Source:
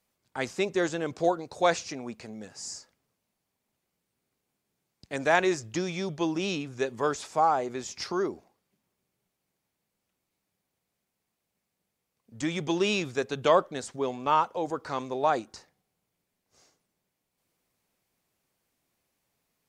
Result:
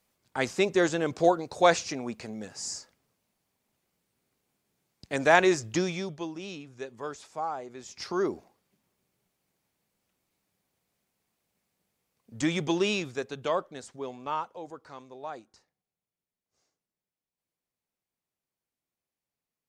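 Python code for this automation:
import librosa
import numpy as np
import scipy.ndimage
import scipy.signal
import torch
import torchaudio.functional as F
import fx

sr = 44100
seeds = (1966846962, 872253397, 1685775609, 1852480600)

y = fx.gain(x, sr, db=fx.line((5.83, 3.0), (6.32, -9.5), (7.75, -9.5), (8.31, 3.0), (12.49, 3.0), (13.49, -7.0), (14.21, -7.0), (15.04, -14.0)))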